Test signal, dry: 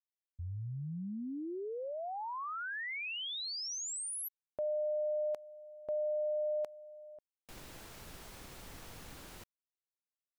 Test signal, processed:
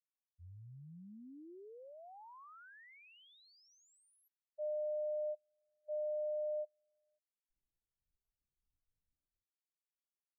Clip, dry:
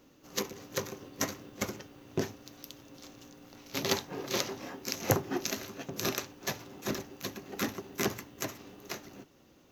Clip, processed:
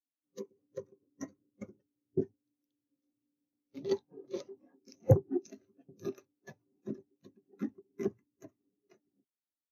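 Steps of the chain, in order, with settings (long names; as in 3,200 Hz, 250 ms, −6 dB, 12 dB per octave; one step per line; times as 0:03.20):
every bin expanded away from the loudest bin 2.5 to 1
level −4 dB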